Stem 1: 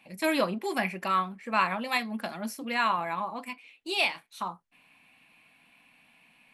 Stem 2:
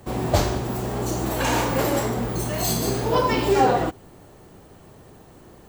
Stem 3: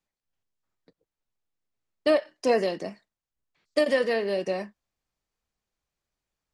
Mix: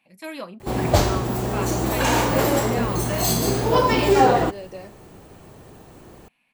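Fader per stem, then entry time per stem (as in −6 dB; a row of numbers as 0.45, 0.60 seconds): −8.0, +2.5, −9.0 decibels; 0.00, 0.60, 0.25 seconds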